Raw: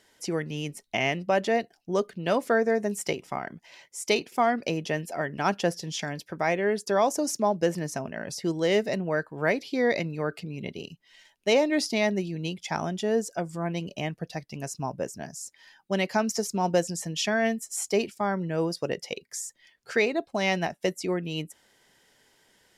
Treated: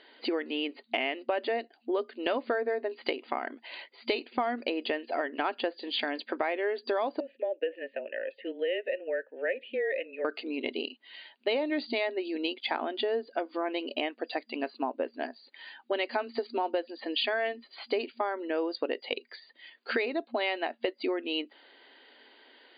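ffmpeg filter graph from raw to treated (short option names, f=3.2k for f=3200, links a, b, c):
-filter_complex "[0:a]asettb=1/sr,asplit=3[a][b][c];[a]atrim=end=7.204[d];[b]atrim=start=7.2:end=10.25,asetpts=PTS-STARTPTS,afade=t=in:d=0.004:c=qsin,afade=t=out:st=3.046:d=0.004:c=qsin,highshelf=f=3.8k:t=q:w=3:g=-9,afreqshift=-24,asplit=3[e][f][g];[e]bandpass=f=530:t=q:w=8,volume=0dB[h];[f]bandpass=f=1.84k:t=q:w=8,volume=-6dB[i];[g]bandpass=f=2.48k:t=q:w=8,volume=-9dB[j];[h][i][j]amix=inputs=3:normalize=0[k];[c]atrim=start=10.246[l];[d][k]acrossfade=d=0.004:c1=hsin:c2=qsin[m];[m][l]acrossfade=d=0.004:c1=qsin:c2=hsin,afftfilt=real='re*between(b*sr/4096,230,4800)':imag='im*between(b*sr/4096,230,4800)':win_size=4096:overlap=0.75,equalizer=f=2.9k:w=4.6:g=2.5,acompressor=threshold=-35dB:ratio=5,volume=7dB"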